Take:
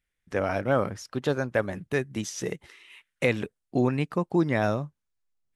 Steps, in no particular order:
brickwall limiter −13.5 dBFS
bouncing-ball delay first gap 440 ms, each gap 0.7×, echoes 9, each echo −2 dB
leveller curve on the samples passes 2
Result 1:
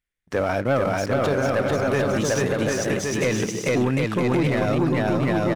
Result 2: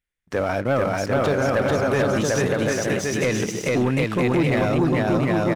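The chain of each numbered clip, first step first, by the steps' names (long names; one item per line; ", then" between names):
leveller curve on the samples, then bouncing-ball delay, then brickwall limiter
bouncing-ball delay, then leveller curve on the samples, then brickwall limiter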